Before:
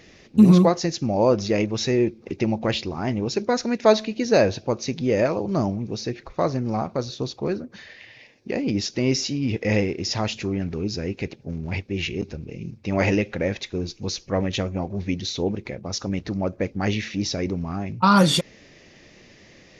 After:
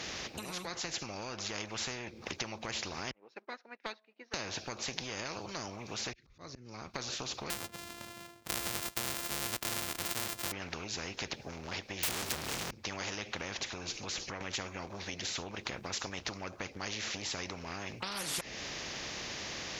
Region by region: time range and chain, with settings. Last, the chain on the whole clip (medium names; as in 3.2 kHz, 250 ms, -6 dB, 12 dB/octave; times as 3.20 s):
3.11–4.34 s: companding laws mixed up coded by A + band-pass 730–2100 Hz + upward expansion 2.5:1, over -40 dBFS
6.13–6.94 s: amplifier tone stack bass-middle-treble 6-0-2 + slow attack 270 ms
7.50–10.52 s: sorted samples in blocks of 128 samples + upward expansion, over -43 dBFS
12.03–12.71 s: jump at every zero crossing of -44 dBFS + waveshaping leveller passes 5
13.55–14.41 s: low-pass 10 kHz + compression 3:1, threshold -34 dBFS
whole clip: high-pass 44 Hz; compression 5:1, threshold -31 dBFS; spectrum-flattening compressor 4:1; trim +6 dB